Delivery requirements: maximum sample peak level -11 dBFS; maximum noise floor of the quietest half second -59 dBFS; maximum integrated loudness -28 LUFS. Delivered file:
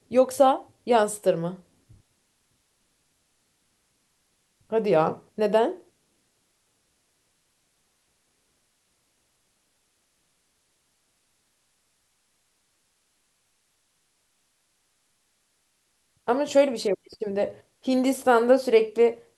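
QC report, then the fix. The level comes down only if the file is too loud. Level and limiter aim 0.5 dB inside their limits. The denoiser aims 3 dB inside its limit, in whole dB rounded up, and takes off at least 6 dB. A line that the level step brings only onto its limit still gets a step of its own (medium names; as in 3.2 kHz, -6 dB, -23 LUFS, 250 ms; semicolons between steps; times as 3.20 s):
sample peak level -6.5 dBFS: fail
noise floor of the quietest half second -71 dBFS: pass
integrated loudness -23.5 LUFS: fail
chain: trim -5 dB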